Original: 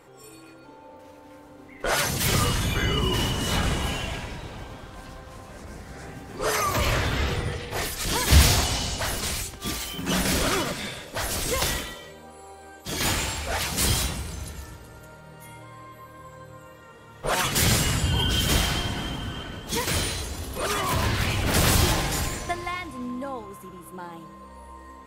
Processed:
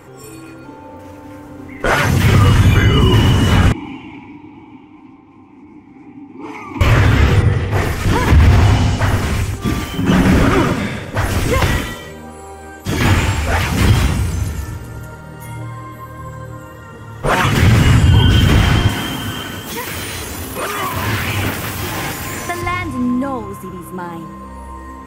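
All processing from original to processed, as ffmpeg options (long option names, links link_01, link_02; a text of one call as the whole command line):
ffmpeg -i in.wav -filter_complex "[0:a]asettb=1/sr,asplit=3[link_01][link_02][link_03];[link_01]atrim=end=3.724[link_04];[link_02]atrim=start=3.72:end=6.81,asetpts=PTS-STARTPTS,afade=type=in:duration=0.004:curve=qsin,afade=type=out:start_time=3.086:duration=0.004:curve=qsin,asplit=3[link_05][link_06][link_07];[link_05]bandpass=frequency=300:width_type=q:width=8,volume=0dB[link_08];[link_06]bandpass=frequency=870:width_type=q:width=8,volume=-6dB[link_09];[link_07]bandpass=frequency=2240:width_type=q:width=8,volume=-9dB[link_10];[link_08][link_09][link_10]amix=inputs=3:normalize=0,aecho=1:1:825:0.133,atrim=end_sample=136269[link_11];[link_03]atrim=start=6.806[link_12];[link_04][link_11]acrossfade=duration=0.004:curve1=hsin:curve2=qsin[link_13];[link_13][link_12]acrossfade=duration=0.004:curve1=qsin:curve2=hsin,asettb=1/sr,asplit=3[link_14][link_15][link_16];[link_14]atrim=end=7.424[link_17];[link_15]atrim=start=7.42:end=11.26,asetpts=PTS-STARTPTS,afade=type=in:duration=0.004:curve=qsin,afade=type=out:start_time=3.836:duration=0.004:curve=qsin,highshelf=frequency=3600:gain=-10.5,aecho=1:1:109:0.447,atrim=end_sample=169344[link_18];[link_16]atrim=start=11.256[link_19];[link_17][link_18]acrossfade=duration=0.004:curve1=hsin:curve2=qsin[link_20];[link_20][link_19]acrossfade=duration=0.004:curve1=qsin:curve2=hsin,asettb=1/sr,asplit=3[link_21][link_22][link_23];[link_21]atrim=end=14.954[link_24];[link_22]atrim=start=14.95:end=17.23,asetpts=PTS-STARTPTS,afade=type=in:duration=0.004:curve=qsin,afade=type=out:start_time=2.276:duration=0.004:curve=qsin,bandreject=frequency=2400:width=6,aphaser=in_gain=1:out_gain=1:delay=3.8:decay=0.26:speed=1.5:type=triangular[link_25];[link_23]atrim=start=17.226[link_26];[link_24][link_25]acrossfade=duration=0.004:curve1=hsin:curve2=qsin[link_27];[link_27][link_26]acrossfade=duration=0.004:curve1=qsin:curve2=hsin,asettb=1/sr,asplit=3[link_28][link_29][link_30];[link_28]atrim=end=18.894[link_31];[link_29]atrim=start=18.89:end=22.62,asetpts=PTS-STARTPTS,afade=type=in:duration=0.004:curve=qsin,afade=type=out:start_time=3.726:duration=0.004:curve=qsin,aemphasis=mode=production:type=bsi,acompressor=threshold=-24dB:ratio=6:attack=3.2:release=140:knee=1:detection=peak[link_32];[link_30]atrim=start=22.616[link_33];[link_31][link_32]acrossfade=duration=0.004:curve1=hsin:curve2=qsin[link_34];[link_34][link_33]acrossfade=duration=0.004:curve1=qsin:curve2=hsin,acrossover=split=3700[link_35][link_36];[link_36]acompressor=threshold=-40dB:ratio=4:attack=1:release=60[link_37];[link_35][link_37]amix=inputs=2:normalize=0,equalizer=frequency=100:width_type=o:width=0.67:gain=9,equalizer=frequency=250:width_type=o:width=0.67:gain=4,equalizer=frequency=630:width_type=o:width=0.67:gain=-4,equalizer=frequency=4000:width_type=o:width=0.67:gain=-7,equalizer=frequency=10000:width_type=o:width=0.67:gain=-3,alimiter=level_in=13dB:limit=-1dB:release=50:level=0:latency=1,volume=-1dB" out.wav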